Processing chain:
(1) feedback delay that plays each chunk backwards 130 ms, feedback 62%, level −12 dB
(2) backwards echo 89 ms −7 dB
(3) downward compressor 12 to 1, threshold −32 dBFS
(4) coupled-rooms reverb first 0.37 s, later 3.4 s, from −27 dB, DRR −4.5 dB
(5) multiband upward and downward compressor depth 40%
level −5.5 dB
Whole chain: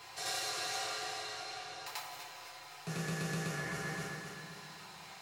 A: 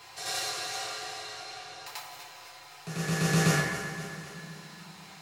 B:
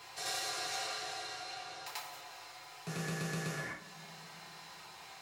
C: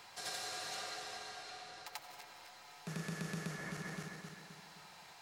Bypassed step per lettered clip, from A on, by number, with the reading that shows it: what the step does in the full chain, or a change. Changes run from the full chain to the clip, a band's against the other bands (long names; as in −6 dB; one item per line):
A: 3, average gain reduction 4.0 dB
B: 1, change in integrated loudness −1.0 LU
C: 4, change in crest factor +2.0 dB